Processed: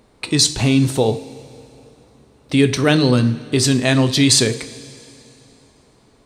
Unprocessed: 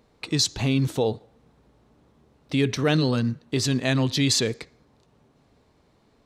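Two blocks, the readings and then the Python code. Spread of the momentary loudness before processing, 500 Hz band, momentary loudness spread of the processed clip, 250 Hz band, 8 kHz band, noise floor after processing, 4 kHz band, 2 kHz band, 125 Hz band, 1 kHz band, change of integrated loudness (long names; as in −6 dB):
7 LU, +7.5 dB, 8 LU, +8.0 dB, +10.0 dB, −54 dBFS, +7.5 dB, +7.5 dB, +6.5 dB, +7.5 dB, +8.0 dB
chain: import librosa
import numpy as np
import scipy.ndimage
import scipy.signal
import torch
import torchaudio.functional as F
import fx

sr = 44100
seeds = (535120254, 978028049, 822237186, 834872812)

y = fx.peak_eq(x, sr, hz=8900.0, db=11.0, octaves=0.22)
y = fx.rev_double_slope(y, sr, seeds[0], early_s=0.41, late_s=3.0, knee_db=-15, drr_db=9.0)
y = y * librosa.db_to_amplitude(7.0)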